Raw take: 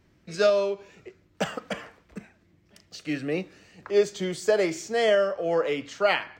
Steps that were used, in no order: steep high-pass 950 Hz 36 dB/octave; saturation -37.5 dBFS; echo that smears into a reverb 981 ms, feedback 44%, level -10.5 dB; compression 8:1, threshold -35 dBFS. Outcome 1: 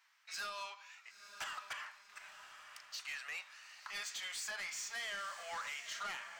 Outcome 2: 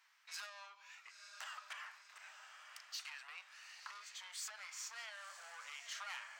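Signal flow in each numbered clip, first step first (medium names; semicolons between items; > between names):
steep high-pass > compression > saturation > echo that smears into a reverb; compression > echo that smears into a reverb > saturation > steep high-pass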